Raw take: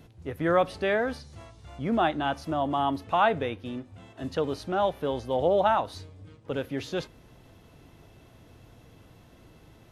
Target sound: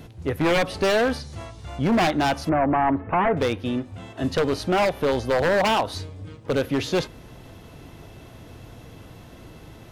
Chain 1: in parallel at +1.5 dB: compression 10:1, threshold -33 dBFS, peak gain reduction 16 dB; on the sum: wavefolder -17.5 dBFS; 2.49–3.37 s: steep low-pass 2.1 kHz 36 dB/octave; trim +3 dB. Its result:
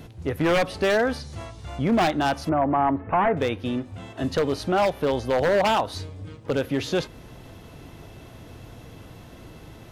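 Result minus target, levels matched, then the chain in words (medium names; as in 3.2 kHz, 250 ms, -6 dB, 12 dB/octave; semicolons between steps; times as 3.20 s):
compression: peak gain reduction +6.5 dB
in parallel at +1.5 dB: compression 10:1, threshold -26 dBFS, peak gain reduction 10 dB; on the sum: wavefolder -17.5 dBFS; 2.49–3.37 s: steep low-pass 2.1 kHz 36 dB/octave; trim +3 dB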